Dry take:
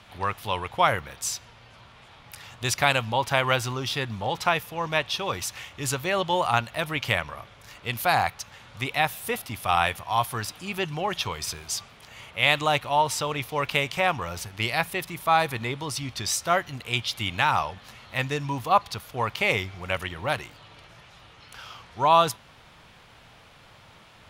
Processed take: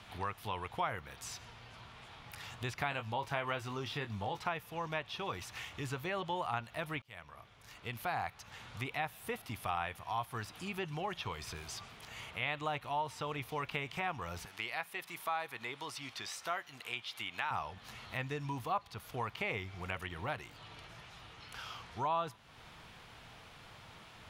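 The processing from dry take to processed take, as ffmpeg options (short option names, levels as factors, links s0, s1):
-filter_complex "[0:a]asettb=1/sr,asplit=3[s0][s1][s2];[s0]atrim=end=2.904[s3];[s1]atrim=start=2.9:end=4.4,asetpts=PTS-STARTPTS,afade=t=in:d=0.004:c=qsin,afade=t=out:st=1.496:d=0.004:c=qsin,asplit=2[s4][s5];[s5]adelay=20,volume=0.398[s6];[s4][s6]amix=inputs=2:normalize=0,atrim=end_sample=66150[s7];[s2]atrim=start=4.396[s8];[s3][s7]acrossfade=d=0.004:c1=hsin:c2=qsin[s9];[s9][s8]acrossfade=d=0.004:c1=qsin:c2=hsin,asettb=1/sr,asplit=3[s10][s11][s12];[s10]atrim=end=14.454[s13];[s11]atrim=start=14.45:end=17.51,asetpts=PTS-STARTPTS,afade=t=in:d=0.004:c=qsin,afade=t=out:st=3.056:d=0.004:c=qsin,highpass=f=790:p=1[s14];[s12]atrim=start=17.506[s15];[s13][s14]acrossfade=d=0.004:c1=hsin:c2=qsin[s16];[s16][s15]acrossfade=d=0.004:c1=qsin:c2=hsin,asplit=2[s17][s18];[s17]atrim=end=7.02,asetpts=PTS-STARTPTS,afade=t=out:st=7.016:d=0.004:c=hsin[s19];[s18]atrim=start=7.02,asetpts=PTS-STARTPTS,afade=t=in:d=1.35[s20];[s19][s20]concat=n=2:v=0:a=1,acrossover=split=3000[s21][s22];[s22]acompressor=threshold=0.00794:ratio=4:attack=1:release=60[s23];[s21][s23]amix=inputs=2:normalize=0,bandreject=f=560:w=12,acompressor=threshold=0.0112:ratio=2,volume=0.75"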